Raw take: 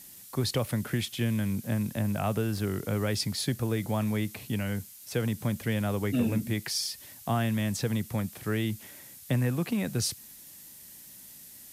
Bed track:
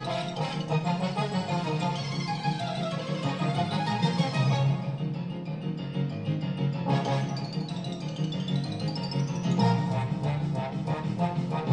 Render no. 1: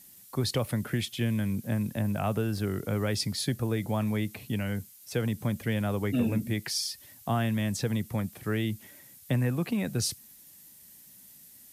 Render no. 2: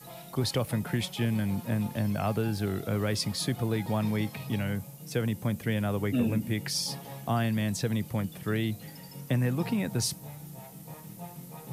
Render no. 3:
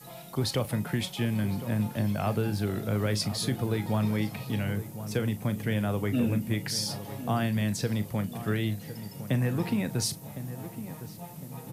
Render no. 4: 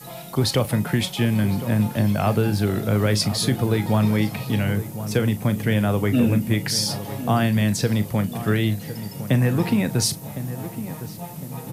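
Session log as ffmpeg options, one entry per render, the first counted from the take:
-af "afftdn=nr=6:nf=-49"
-filter_complex "[1:a]volume=0.168[s0];[0:a][s0]amix=inputs=2:normalize=0"
-filter_complex "[0:a]asplit=2[s0][s1];[s1]adelay=38,volume=0.2[s2];[s0][s2]amix=inputs=2:normalize=0,asplit=2[s3][s4];[s4]adelay=1058,lowpass=f=1400:p=1,volume=0.251,asplit=2[s5][s6];[s6]adelay=1058,lowpass=f=1400:p=1,volume=0.47,asplit=2[s7][s8];[s8]adelay=1058,lowpass=f=1400:p=1,volume=0.47,asplit=2[s9][s10];[s10]adelay=1058,lowpass=f=1400:p=1,volume=0.47,asplit=2[s11][s12];[s12]adelay=1058,lowpass=f=1400:p=1,volume=0.47[s13];[s3][s5][s7][s9][s11][s13]amix=inputs=6:normalize=0"
-af "volume=2.51"

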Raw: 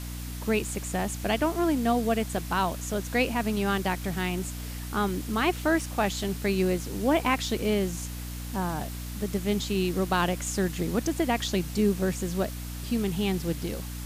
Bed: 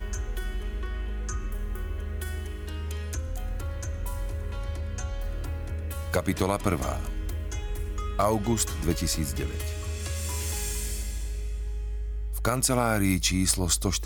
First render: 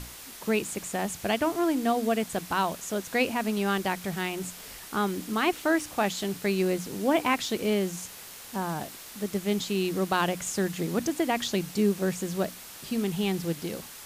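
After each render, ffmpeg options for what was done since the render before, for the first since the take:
-af "bandreject=f=60:t=h:w=6,bandreject=f=120:t=h:w=6,bandreject=f=180:t=h:w=6,bandreject=f=240:t=h:w=6,bandreject=f=300:t=h:w=6"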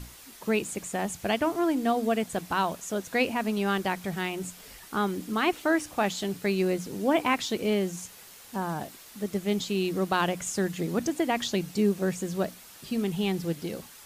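-af "afftdn=nr=6:nf=-45"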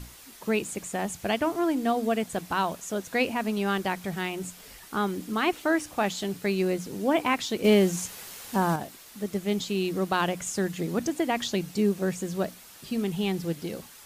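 -filter_complex "[0:a]asettb=1/sr,asplit=3[s0][s1][s2];[s0]atrim=end=7.644[s3];[s1]atrim=start=7.64:end=8.76,asetpts=PTS-STARTPTS,afade=t=in:d=0.004:c=qsin,afade=t=out:st=1.116:d=0.004:c=qsin,acontrast=72[s4];[s2]atrim=start=8.756[s5];[s3][s4]acrossfade=d=0.004:c1=hsin:c2=qsin[s6];[s6][s5]acrossfade=d=0.004:c1=qsin:c2=hsin"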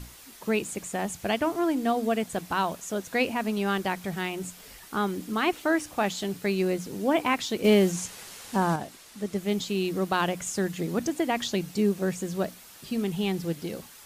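-filter_complex "[0:a]asettb=1/sr,asplit=3[s0][s1][s2];[s0]atrim=end=7.924[s3];[s1]atrim=start=7.92:end=9.38,asetpts=PTS-STARTPTS,afade=t=in:d=0.004:c=qsin,afade=t=out:st=1.456:d=0.004:c=qsin,lowpass=11000[s4];[s2]atrim=start=9.376[s5];[s3][s4]acrossfade=d=0.004:c1=hsin:c2=qsin[s6];[s6][s5]acrossfade=d=0.004:c1=qsin:c2=hsin"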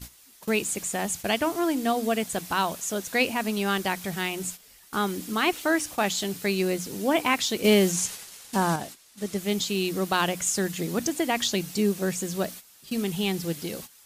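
-af "agate=range=0.251:threshold=0.00794:ratio=16:detection=peak,highshelf=f=2700:g=8.5"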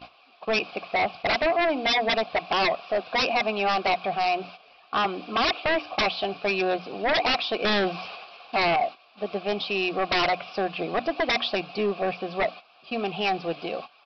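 -filter_complex "[0:a]asplit=3[s0][s1][s2];[s0]bandpass=f=730:t=q:w=8,volume=1[s3];[s1]bandpass=f=1090:t=q:w=8,volume=0.501[s4];[s2]bandpass=f=2440:t=q:w=8,volume=0.355[s5];[s3][s4][s5]amix=inputs=3:normalize=0,aresample=11025,aeval=exprs='0.112*sin(PI/2*6.31*val(0)/0.112)':c=same,aresample=44100"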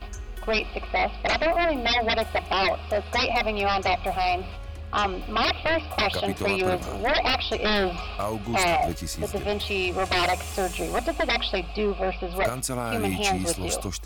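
-filter_complex "[1:a]volume=0.562[s0];[0:a][s0]amix=inputs=2:normalize=0"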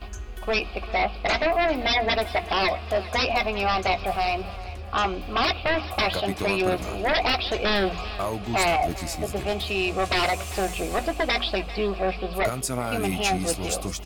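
-filter_complex "[0:a]asplit=2[s0][s1];[s1]adelay=16,volume=0.251[s2];[s0][s2]amix=inputs=2:normalize=0,aecho=1:1:395|790|1185|1580|1975:0.141|0.0763|0.0412|0.0222|0.012"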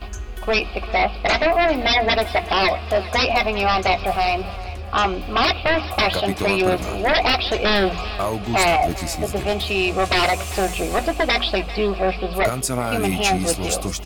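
-af "volume=1.78"

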